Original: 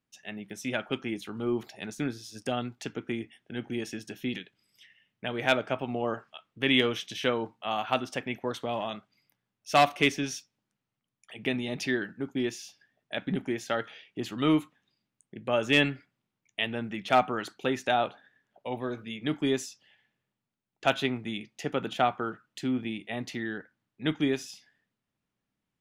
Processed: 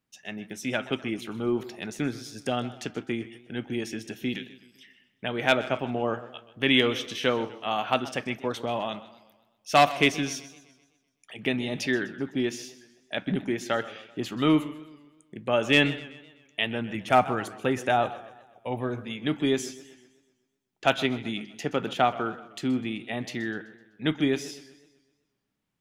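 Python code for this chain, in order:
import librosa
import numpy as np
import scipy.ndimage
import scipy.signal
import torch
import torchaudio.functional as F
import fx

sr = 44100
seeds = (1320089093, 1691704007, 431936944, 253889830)

y = fx.graphic_eq_15(x, sr, hz=(100, 4000, 10000), db=(8, -8, 5), at=(16.95, 19.04))
y = y + 10.0 ** (-21.0 / 20.0) * np.pad(y, (int(154 * sr / 1000.0), 0))[:len(y)]
y = fx.echo_warbled(y, sr, ms=127, feedback_pct=51, rate_hz=2.8, cents=122, wet_db=-17.5)
y = y * librosa.db_to_amplitude(2.5)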